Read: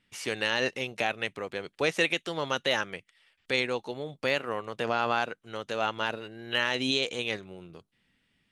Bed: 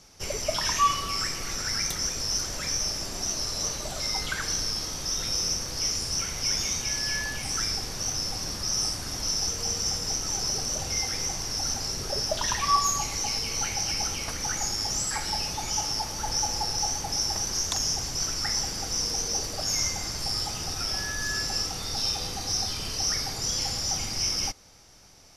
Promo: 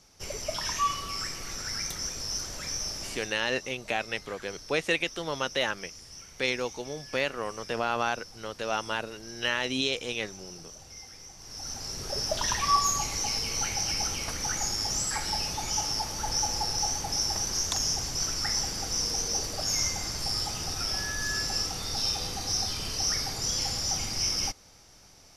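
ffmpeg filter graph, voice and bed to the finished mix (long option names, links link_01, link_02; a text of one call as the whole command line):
ffmpeg -i stem1.wav -i stem2.wav -filter_complex "[0:a]adelay=2900,volume=-1dB[link_01];[1:a]volume=11.5dB,afade=type=out:start_time=3.07:duration=0.27:silence=0.237137,afade=type=in:start_time=11.36:duration=1.03:silence=0.149624[link_02];[link_01][link_02]amix=inputs=2:normalize=0" out.wav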